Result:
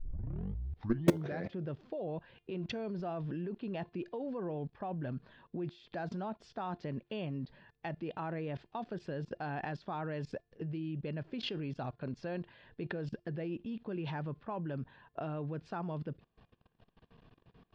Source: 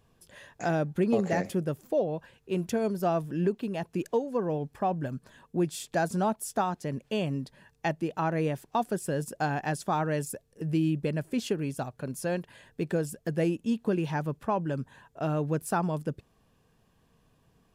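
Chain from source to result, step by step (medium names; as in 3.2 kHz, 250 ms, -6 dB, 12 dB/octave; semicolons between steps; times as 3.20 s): tape start-up on the opening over 1.48 s; steep low-pass 4.3 kHz 36 dB/octave; level held to a coarse grid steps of 22 dB; in parallel at -7 dB: integer overflow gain 24.5 dB; on the sum: feedback comb 350 Hz, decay 0.28 s, harmonics all, mix 40%; trim +7 dB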